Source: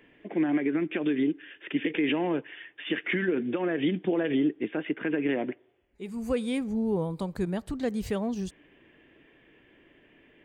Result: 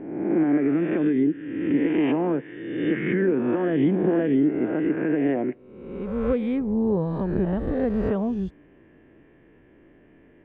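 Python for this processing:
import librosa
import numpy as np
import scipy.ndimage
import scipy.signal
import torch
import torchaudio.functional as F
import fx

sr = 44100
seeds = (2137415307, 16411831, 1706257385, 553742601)

y = fx.spec_swells(x, sr, rise_s=1.17)
y = scipy.signal.sosfilt(scipy.signal.butter(2, 1500.0, 'lowpass', fs=sr, output='sos'), y)
y = fx.low_shelf(y, sr, hz=320.0, db=7.0)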